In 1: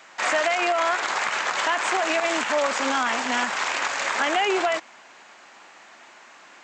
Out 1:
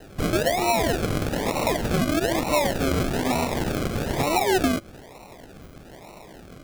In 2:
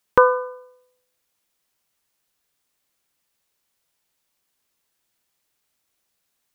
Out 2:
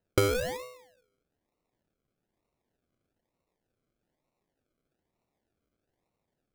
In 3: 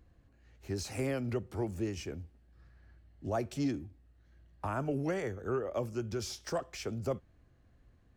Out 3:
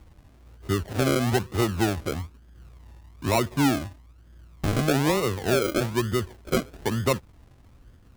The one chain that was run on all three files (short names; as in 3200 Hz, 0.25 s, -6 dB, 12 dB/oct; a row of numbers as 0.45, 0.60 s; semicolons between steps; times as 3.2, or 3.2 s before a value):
compressor 4:1, threshold -26 dBFS; Gaussian blur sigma 5.2 samples; decimation with a swept rate 38×, swing 60% 1.1 Hz; normalise peaks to -12 dBFS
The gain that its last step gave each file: +9.0, +4.5, +11.5 dB